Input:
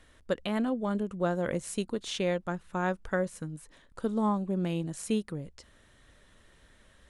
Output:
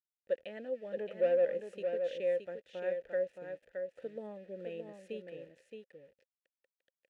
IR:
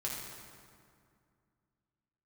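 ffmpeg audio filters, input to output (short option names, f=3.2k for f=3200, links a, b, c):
-filter_complex "[0:a]lowshelf=f=74:g=10,asettb=1/sr,asplit=3[a][b][c];[a]atrim=end=0.974[d];[b]atrim=start=0.97:end=1.45,asetpts=PTS-STARTPTS,afade=t=in:d=0.004:c=qsin,afade=t=out:st=0.476:d=0.004:c=qsin,asplit=2[e][f];[f]highpass=f=720:p=1,volume=25dB,asoftclip=type=tanh:threshold=-16dB[g];[e][g]amix=inputs=2:normalize=0,lowpass=f=1.6k:p=1,volume=-6dB[h];[c]atrim=start=1.446[i];[d][h]acrossfade=d=0.004:c1=hsin:c2=qsin[j];[j][i]acrossfade=d=0.004:c1=qsin:c2=hsin,aeval=exprs='val(0)*gte(abs(val(0)),0.00708)':c=same,asplit=3[k][l][m];[k]bandpass=f=530:t=q:w=8,volume=0dB[n];[l]bandpass=f=1.84k:t=q:w=8,volume=-6dB[o];[m]bandpass=f=2.48k:t=q:w=8,volume=-9dB[p];[n][o][p]amix=inputs=3:normalize=0,aecho=1:1:621:0.501"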